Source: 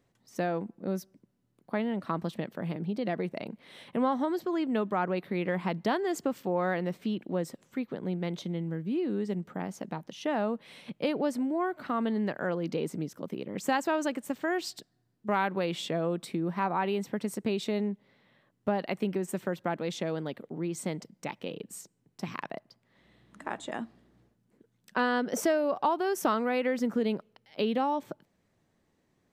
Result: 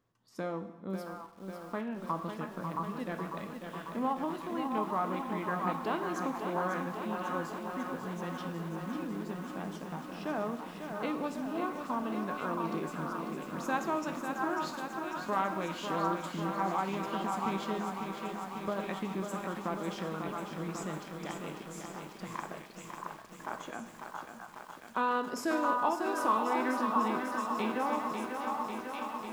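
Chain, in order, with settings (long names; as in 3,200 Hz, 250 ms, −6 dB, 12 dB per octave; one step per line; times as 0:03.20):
dense smooth reverb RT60 0.93 s, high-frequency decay 1×, DRR 7.5 dB
formants moved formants −2 semitones
parametric band 1,100 Hz +9 dB 0.58 octaves
echo through a band-pass that steps 672 ms, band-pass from 1,100 Hz, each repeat 1.4 octaves, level −1.5 dB
feedback echo at a low word length 546 ms, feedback 80%, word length 8 bits, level −6.5 dB
level −7.5 dB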